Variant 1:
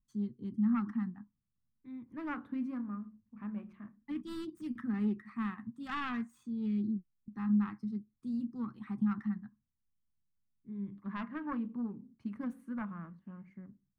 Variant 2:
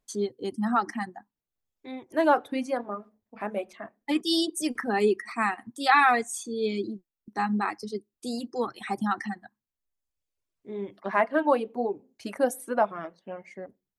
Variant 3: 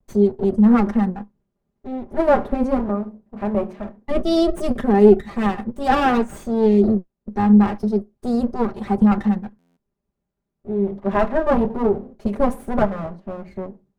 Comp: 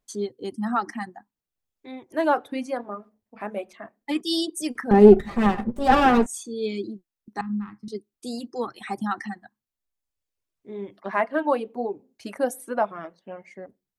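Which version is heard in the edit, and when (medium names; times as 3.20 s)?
2
4.91–6.26 s: from 3
7.41–7.88 s: from 1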